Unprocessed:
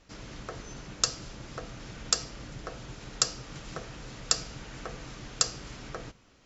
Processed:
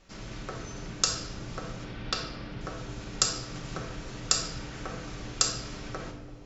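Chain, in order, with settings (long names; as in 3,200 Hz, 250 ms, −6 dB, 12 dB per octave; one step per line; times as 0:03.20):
0:01.84–0:02.61: low-pass filter 4,400 Hz 24 dB per octave
on a send: bucket-brigade delay 335 ms, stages 2,048, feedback 76%, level −16 dB
on the sum: rectangular room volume 520 cubic metres, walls mixed, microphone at 1.1 metres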